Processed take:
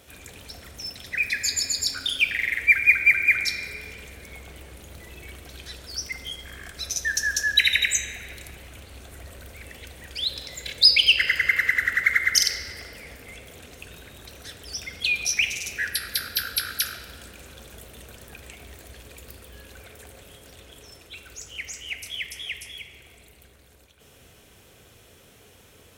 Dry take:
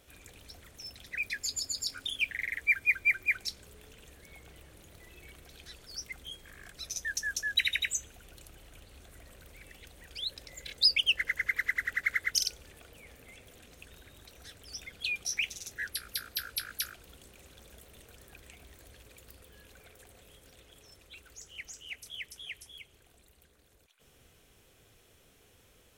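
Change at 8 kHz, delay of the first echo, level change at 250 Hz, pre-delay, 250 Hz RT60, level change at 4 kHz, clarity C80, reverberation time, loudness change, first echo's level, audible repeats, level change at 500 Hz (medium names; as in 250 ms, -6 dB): +9.5 dB, no echo, +10.5 dB, 3 ms, 2.9 s, +9.5 dB, 8.0 dB, 2.7 s, +9.5 dB, no echo, no echo, +10.5 dB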